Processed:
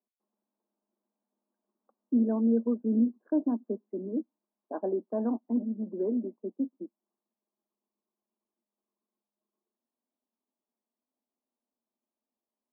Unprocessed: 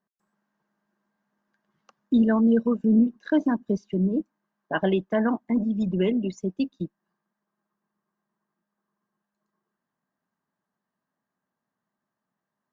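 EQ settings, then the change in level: Gaussian low-pass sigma 10 samples; elliptic high-pass 230 Hz, stop band 40 dB; -3.5 dB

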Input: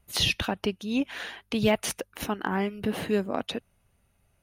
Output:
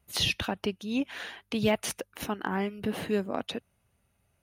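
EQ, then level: high-pass 54 Hz; -2.5 dB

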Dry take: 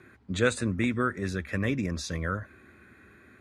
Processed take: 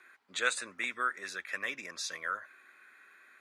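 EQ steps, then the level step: high-pass 990 Hz 12 dB/octave; 0.0 dB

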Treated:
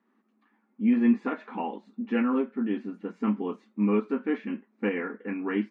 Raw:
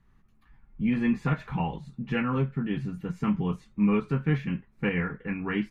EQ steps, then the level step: brick-wall FIR high-pass 210 Hz; distance through air 76 m; tilt EQ -2.5 dB/octave; 0.0 dB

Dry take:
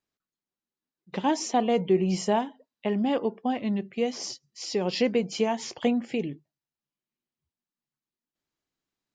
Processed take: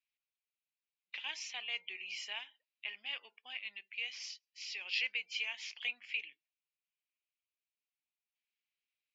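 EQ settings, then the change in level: ladder band-pass 2.7 kHz, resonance 65%; distance through air 80 m; treble shelf 3 kHz +8 dB; +4.0 dB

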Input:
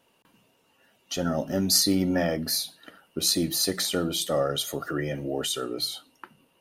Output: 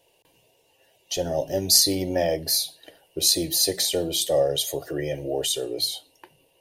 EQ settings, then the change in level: static phaser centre 540 Hz, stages 4; +5.0 dB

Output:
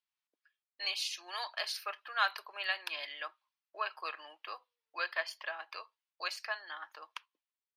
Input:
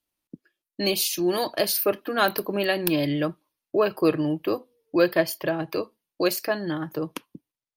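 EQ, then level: high-pass 950 Hz 24 dB/octave; low-pass 4.5 kHz 12 dB/octave; -5.5 dB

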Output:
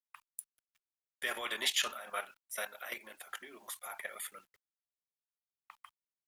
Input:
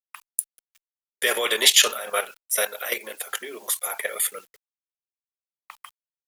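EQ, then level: peaking EQ 460 Hz -14 dB 0.59 oct; treble shelf 2.8 kHz -11.5 dB; -8.5 dB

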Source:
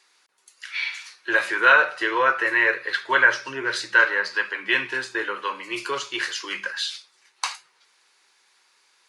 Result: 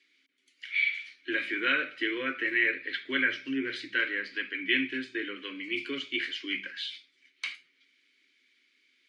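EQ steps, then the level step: vowel filter i; bass shelf 150 Hz +10 dB; dynamic bell 6.1 kHz, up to -5 dB, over -59 dBFS, Q 1.5; +8.5 dB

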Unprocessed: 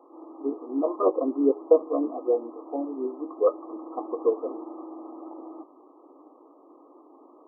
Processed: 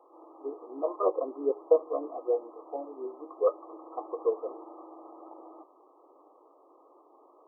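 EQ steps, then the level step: high-pass 400 Hz 24 dB/octave; -3.0 dB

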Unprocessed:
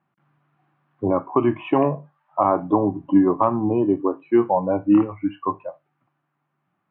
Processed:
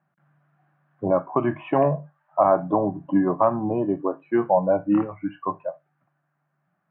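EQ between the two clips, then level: fifteen-band graphic EQ 160 Hz +12 dB, 630 Hz +12 dB, 1.6 kHz +11 dB; -8.0 dB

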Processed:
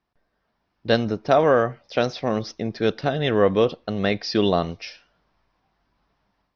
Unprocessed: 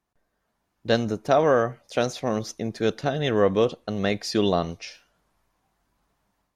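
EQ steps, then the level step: elliptic low-pass 5.4 kHz, stop band 40 dB; +3.0 dB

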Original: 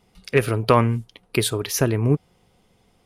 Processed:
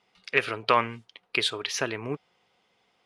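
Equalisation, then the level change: dynamic bell 3.2 kHz, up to +4 dB, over -39 dBFS, Q 1.1; band-pass filter 2.4 kHz, Q 0.5; distance through air 58 m; 0.0 dB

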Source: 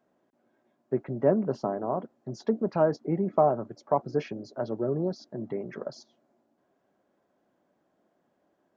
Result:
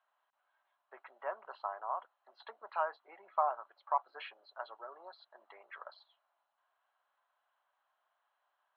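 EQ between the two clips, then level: high-pass 920 Hz 24 dB/octave; rippled Chebyshev low-pass 4.2 kHz, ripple 6 dB; +2.5 dB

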